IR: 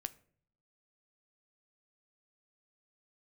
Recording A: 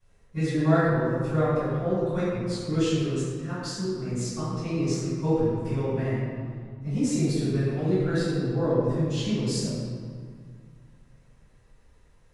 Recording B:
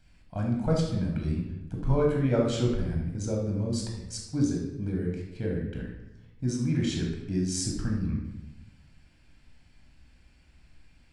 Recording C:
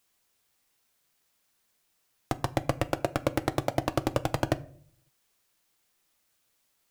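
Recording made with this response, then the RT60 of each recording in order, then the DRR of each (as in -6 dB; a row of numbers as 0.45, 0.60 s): C; 2.1, 1.0, 0.55 s; -18.5, -1.0, 11.5 dB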